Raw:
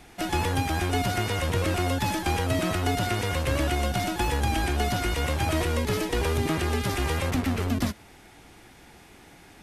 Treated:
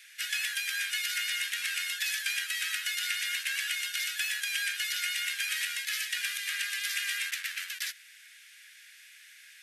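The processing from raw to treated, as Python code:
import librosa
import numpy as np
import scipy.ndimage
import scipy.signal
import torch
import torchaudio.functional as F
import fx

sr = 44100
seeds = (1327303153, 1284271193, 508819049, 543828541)

y = scipy.signal.sosfilt(scipy.signal.cheby1(5, 1.0, 1600.0, 'highpass', fs=sr, output='sos'), x)
y = y * 10.0 ** (3.0 / 20.0)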